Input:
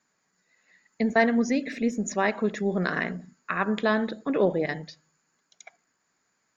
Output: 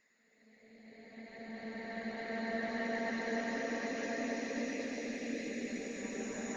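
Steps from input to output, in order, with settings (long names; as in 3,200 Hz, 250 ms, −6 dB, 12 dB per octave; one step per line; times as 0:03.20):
extreme stretch with random phases 4.5×, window 1.00 s, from 0:00.50
harmonic and percussive parts rebalanced harmonic −12 dB
level −3.5 dB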